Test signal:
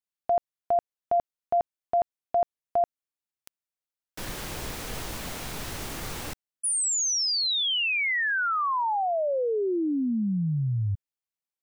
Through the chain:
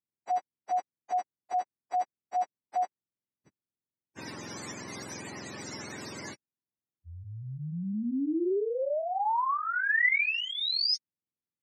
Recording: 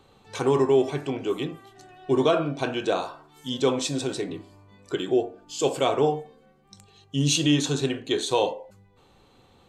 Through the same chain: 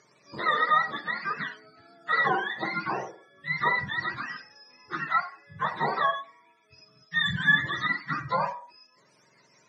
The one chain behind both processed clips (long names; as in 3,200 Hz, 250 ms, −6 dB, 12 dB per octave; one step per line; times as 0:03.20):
frequency axis turned over on the octave scale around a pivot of 710 Hz
loudspeaker in its box 370–8,200 Hz, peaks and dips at 480 Hz −5 dB, 690 Hz −7 dB, 1,300 Hz −4 dB, 2,000 Hz +6 dB, 3,200 Hz −9 dB, 5,800 Hz +8 dB
level +2.5 dB